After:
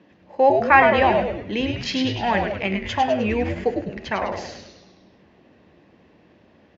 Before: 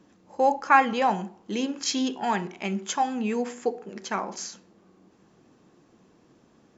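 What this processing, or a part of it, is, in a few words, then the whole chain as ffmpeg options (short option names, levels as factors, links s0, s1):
frequency-shifting delay pedal into a guitar cabinet: -filter_complex "[0:a]asplit=8[s0][s1][s2][s3][s4][s5][s6][s7];[s1]adelay=102,afreqshift=-150,volume=0.562[s8];[s2]adelay=204,afreqshift=-300,volume=0.302[s9];[s3]adelay=306,afreqshift=-450,volume=0.164[s10];[s4]adelay=408,afreqshift=-600,volume=0.0881[s11];[s5]adelay=510,afreqshift=-750,volume=0.0479[s12];[s6]adelay=612,afreqshift=-900,volume=0.0257[s13];[s7]adelay=714,afreqshift=-1050,volume=0.014[s14];[s0][s8][s9][s10][s11][s12][s13][s14]amix=inputs=8:normalize=0,highpass=79,equalizer=f=82:t=q:w=4:g=5,equalizer=f=120:t=q:w=4:g=-4,equalizer=f=590:t=q:w=4:g=6,equalizer=f=1300:t=q:w=4:g=-5,equalizer=f=1900:t=q:w=4:g=8,equalizer=f=2700:t=q:w=4:g=5,lowpass=f=4400:w=0.5412,lowpass=f=4400:w=1.3066,volume=1.41"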